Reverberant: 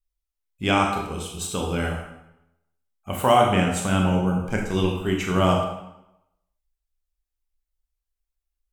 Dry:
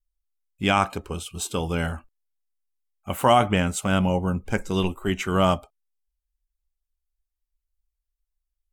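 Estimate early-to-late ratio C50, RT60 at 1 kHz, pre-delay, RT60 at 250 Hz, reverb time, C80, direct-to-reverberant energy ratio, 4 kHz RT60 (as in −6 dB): 4.0 dB, 0.85 s, 22 ms, 0.95 s, 0.85 s, 7.0 dB, 0.5 dB, 0.75 s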